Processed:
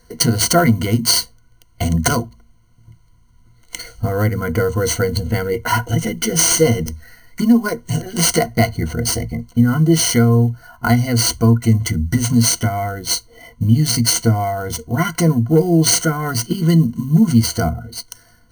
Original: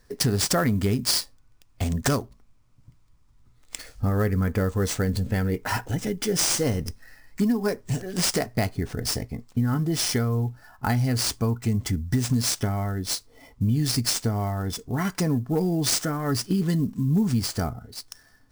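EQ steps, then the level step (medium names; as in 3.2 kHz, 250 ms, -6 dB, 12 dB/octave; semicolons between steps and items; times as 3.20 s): rippled EQ curve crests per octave 1.9, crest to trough 18 dB; +5.0 dB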